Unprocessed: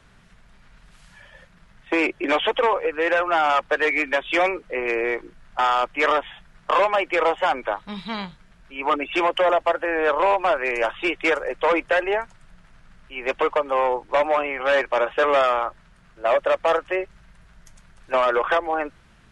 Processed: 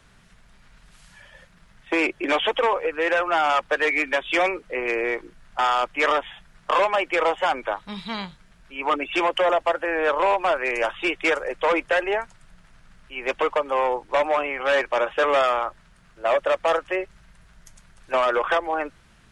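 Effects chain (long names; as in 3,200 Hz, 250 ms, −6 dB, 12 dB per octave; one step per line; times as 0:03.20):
high-shelf EQ 4,400 Hz +6 dB
level −1.5 dB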